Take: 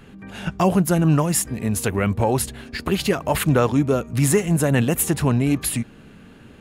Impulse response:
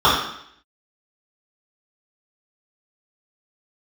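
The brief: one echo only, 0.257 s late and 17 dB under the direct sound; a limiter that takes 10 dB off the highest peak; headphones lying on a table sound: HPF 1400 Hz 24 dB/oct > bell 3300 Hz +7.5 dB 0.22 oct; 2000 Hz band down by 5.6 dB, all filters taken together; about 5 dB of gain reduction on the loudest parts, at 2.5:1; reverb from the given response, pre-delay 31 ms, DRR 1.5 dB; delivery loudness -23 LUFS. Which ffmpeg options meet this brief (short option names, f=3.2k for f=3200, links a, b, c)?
-filter_complex "[0:a]equalizer=f=2k:t=o:g=-7,acompressor=threshold=-21dB:ratio=2.5,alimiter=limit=-21dB:level=0:latency=1,aecho=1:1:257:0.141,asplit=2[a][b];[1:a]atrim=start_sample=2205,adelay=31[c];[b][c]afir=irnorm=-1:irlink=0,volume=-27.5dB[d];[a][d]amix=inputs=2:normalize=0,highpass=f=1.4k:w=0.5412,highpass=f=1.4k:w=1.3066,equalizer=f=3.3k:t=o:w=0.22:g=7.5,volume=12.5dB"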